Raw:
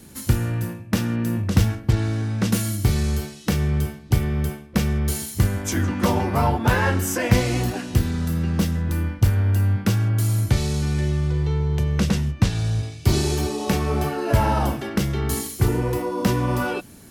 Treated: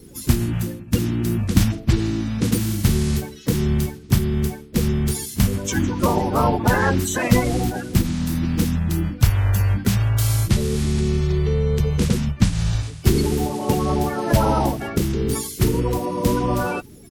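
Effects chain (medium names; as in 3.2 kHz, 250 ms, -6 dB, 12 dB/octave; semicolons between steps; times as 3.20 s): coarse spectral quantiser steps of 30 dB; harmony voices -12 st -9 dB, +3 st -17 dB; trim +1.5 dB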